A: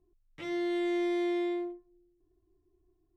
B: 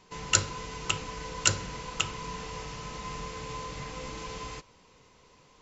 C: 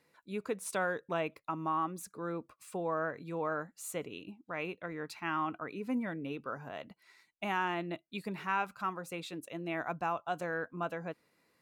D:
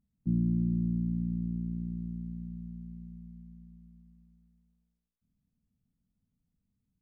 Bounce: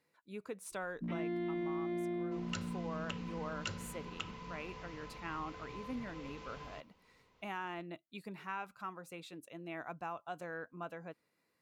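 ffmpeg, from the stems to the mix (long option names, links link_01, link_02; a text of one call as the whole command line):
ffmpeg -i stem1.wav -i stem2.wav -i stem3.wav -i stem4.wav -filter_complex "[0:a]lowpass=2400,adelay=700,volume=0dB[link_01];[1:a]lowpass=3900,adelay=2200,volume=-10.5dB[link_02];[2:a]volume=-7.5dB[link_03];[3:a]highpass=frequency=190:width=0.5412,highpass=frequency=190:width=1.3066,dynaudnorm=framelen=290:gausssize=7:maxgain=8.5dB,volume=26.5dB,asoftclip=hard,volume=-26.5dB,adelay=750,volume=-7dB[link_04];[link_01][link_02][link_03][link_04]amix=inputs=4:normalize=0,acompressor=threshold=-35dB:ratio=6" out.wav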